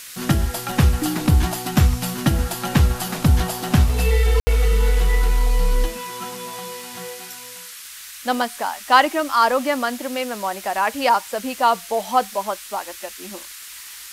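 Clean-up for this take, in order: clip repair -4 dBFS; de-click; room tone fill 4.40–4.47 s; noise print and reduce 26 dB

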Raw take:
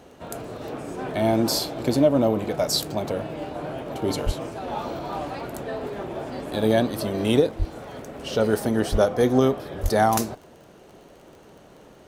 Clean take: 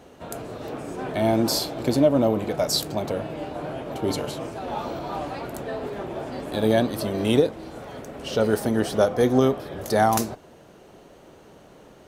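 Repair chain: de-click; de-plosive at 4.25/7.58/8.91/9.82 s

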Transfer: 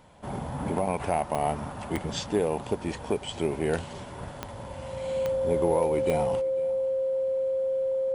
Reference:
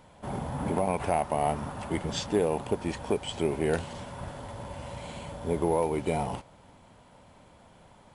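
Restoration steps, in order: de-click; band-stop 530 Hz, Q 30; inverse comb 500 ms -21.5 dB

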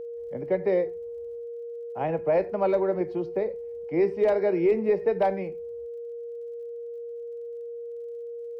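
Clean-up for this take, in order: de-click; band-stop 470 Hz, Q 30

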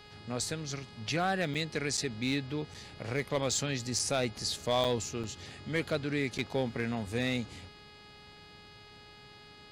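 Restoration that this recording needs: clip repair -21 dBFS; de-hum 417.1 Hz, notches 12; interpolate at 1.54/1.97/2.74/3.99/4.84/5.23/6.38 s, 6.4 ms

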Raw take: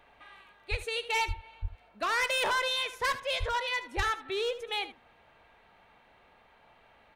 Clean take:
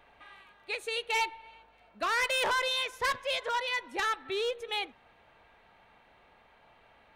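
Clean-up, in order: de-plosive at 0.70/1.27/1.61/3.39/3.96 s; inverse comb 76 ms -14.5 dB

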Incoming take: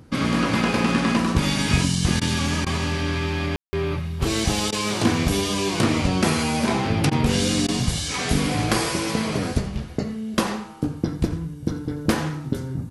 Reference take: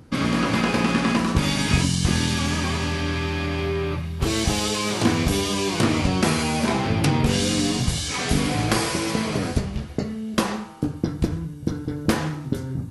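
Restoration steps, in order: room tone fill 3.56–3.73 s; interpolate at 2.20/2.65/4.71/7.10/7.67 s, 13 ms; inverse comb 86 ms -16.5 dB

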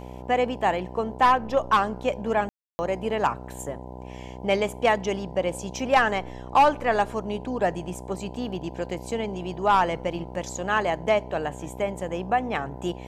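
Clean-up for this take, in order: de-hum 62.7 Hz, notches 16; room tone fill 2.49–2.79 s

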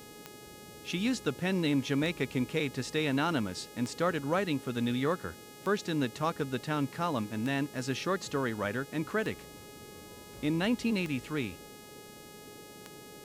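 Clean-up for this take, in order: de-click; de-hum 418.1 Hz, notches 36; noise print and reduce 28 dB

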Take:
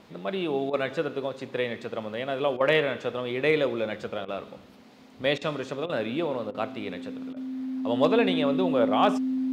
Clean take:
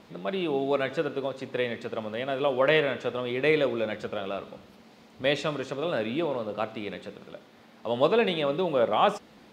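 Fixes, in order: clip repair -10.5 dBFS; band-stop 260 Hz, Q 30; interpolate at 0.70/2.57/4.25/5.38/5.86/6.51/7.33 s, 33 ms

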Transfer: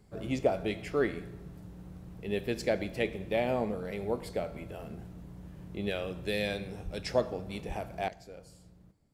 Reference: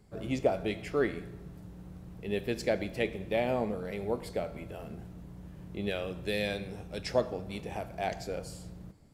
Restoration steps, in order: 6.84–6.96 s: high-pass 140 Hz 24 dB/octave; 7.67–7.79 s: high-pass 140 Hz 24 dB/octave; 8.08 s: gain correction +11.5 dB

